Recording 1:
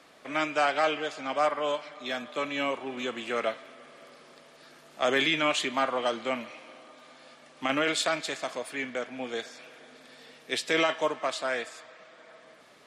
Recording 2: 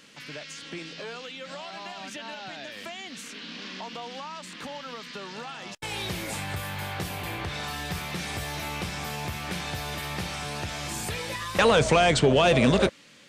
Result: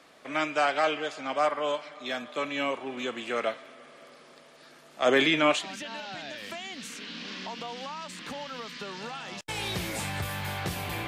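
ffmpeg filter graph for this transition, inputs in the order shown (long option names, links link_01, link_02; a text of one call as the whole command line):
ffmpeg -i cue0.wav -i cue1.wav -filter_complex "[0:a]asettb=1/sr,asplit=3[link_01][link_02][link_03];[link_01]atrim=end=5.064[link_04];[link_02]atrim=start=5.06:end=5.67,asetpts=PTS-STARTPTS,afade=type=in:duration=0.004:curve=qsin,afade=type=out:start_time=0.606:duration=0.004:curve=qsin,equalizer=frequency=390:width=0.32:gain=5[link_05];[link_03]atrim=start=5.666[link_06];[link_04][link_05]acrossfade=duration=0.004:curve1=hsin:curve2=qsin[link_07];[link_07][link_06]acrossfade=duration=0.004:curve1=qsin:curve2=hsin,apad=whole_dur=11.07,atrim=end=11.07,atrim=end=5.67,asetpts=PTS-STARTPTS[link_08];[1:a]atrim=start=1.89:end=7.41,asetpts=PTS-STARTPTS[link_09];[link_08][link_09]acrossfade=duration=0.12:curve1=tri:curve2=tri" out.wav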